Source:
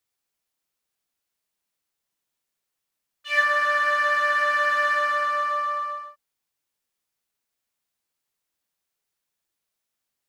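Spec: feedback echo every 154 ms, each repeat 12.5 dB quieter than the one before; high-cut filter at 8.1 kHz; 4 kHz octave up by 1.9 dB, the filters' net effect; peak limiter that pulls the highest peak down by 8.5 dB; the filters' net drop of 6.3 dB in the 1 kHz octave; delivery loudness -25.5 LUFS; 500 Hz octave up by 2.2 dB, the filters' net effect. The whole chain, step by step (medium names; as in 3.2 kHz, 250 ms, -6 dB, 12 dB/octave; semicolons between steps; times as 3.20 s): low-pass 8.1 kHz; peaking EQ 500 Hz +6 dB; peaking EQ 1 kHz -9 dB; peaking EQ 4 kHz +3.5 dB; peak limiter -19 dBFS; feedback delay 154 ms, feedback 24%, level -12.5 dB; trim +1 dB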